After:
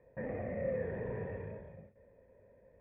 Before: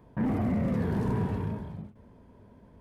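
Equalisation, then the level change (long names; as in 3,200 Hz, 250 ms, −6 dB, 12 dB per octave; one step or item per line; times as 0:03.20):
formant resonators in series e
parametric band 260 Hz −8 dB 1.2 octaves
+8.0 dB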